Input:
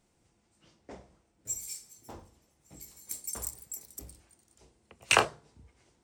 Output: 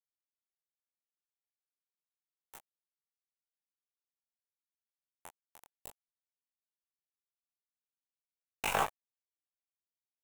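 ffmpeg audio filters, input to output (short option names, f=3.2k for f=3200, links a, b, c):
-filter_complex "[0:a]aeval=exprs='if(lt(val(0),0),0.708*val(0),val(0))':c=same,acrossover=split=380[a][b];[a]acompressor=threshold=-40dB:ratio=6[c];[c][b]amix=inputs=2:normalize=0,aeval=exprs='(tanh(14.1*val(0)+0.8)-tanh(0.8))/14.1':c=same,atempo=0.59,highpass=f=120:p=1,aecho=1:1:75|150|225:0.224|0.0515|0.0118,acrusher=bits=4:mix=0:aa=0.000001,equalizer=f=830:t=o:w=0.85:g=12.5,flanger=delay=18.5:depth=5.6:speed=0.44,equalizer=f=4.7k:t=o:w=0.59:g=-10"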